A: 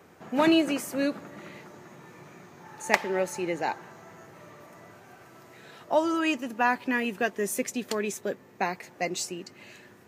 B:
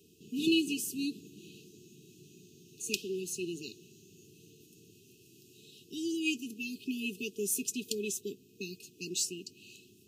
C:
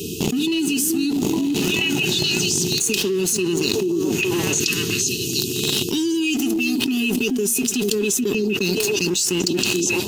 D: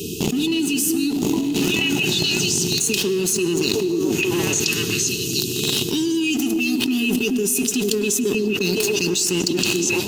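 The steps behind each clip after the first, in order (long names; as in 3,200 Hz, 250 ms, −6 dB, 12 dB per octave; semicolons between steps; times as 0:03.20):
brick-wall band-stop 460–2,500 Hz; high-shelf EQ 2,600 Hz +8 dB; level −6 dB
leveller curve on the samples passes 2; echo through a band-pass that steps 430 ms, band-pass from 270 Hz, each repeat 1.4 octaves, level −10.5 dB; envelope flattener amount 100%; level −2.5 dB
convolution reverb RT60 1.9 s, pre-delay 98 ms, DRR 12 dB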